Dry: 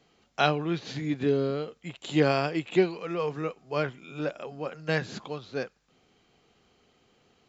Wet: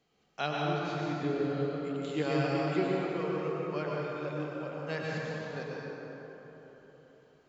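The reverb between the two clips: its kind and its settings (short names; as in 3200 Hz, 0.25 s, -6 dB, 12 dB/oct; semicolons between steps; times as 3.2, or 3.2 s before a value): plate-style reverb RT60 4 s, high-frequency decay 0.45×, pre-delay 90 ms, DRR -4.5 dB; gain -10 dB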